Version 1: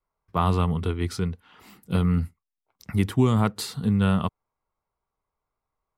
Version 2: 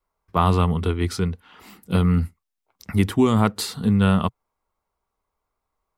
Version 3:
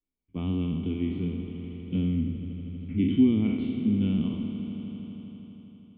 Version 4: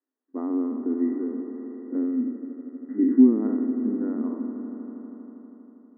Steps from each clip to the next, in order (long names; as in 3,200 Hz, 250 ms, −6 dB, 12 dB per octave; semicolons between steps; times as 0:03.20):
parametric band 130 Hz −14 dB 0.24 octaves; level +4.5 dB
peak hold with a decay on every bin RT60 1.08 s; formant resonators in series i; echo that builds up and dies away 80 ms, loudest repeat 5, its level −16.5 dB
linear-phase brick-wall band-pass 230–2,000 Hz; level +6.5 dB